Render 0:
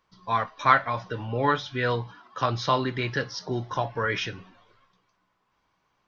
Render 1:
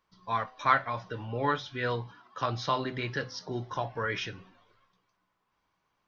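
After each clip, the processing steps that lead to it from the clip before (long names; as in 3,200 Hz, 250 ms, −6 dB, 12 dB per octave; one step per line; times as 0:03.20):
hum removal 127.2 Hz, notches 6
level −5 dB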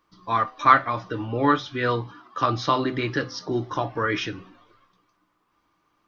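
hollow resonant body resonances 310/1,200 Hz, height 12 dB, ringing for 55 ms
level +5.5 dB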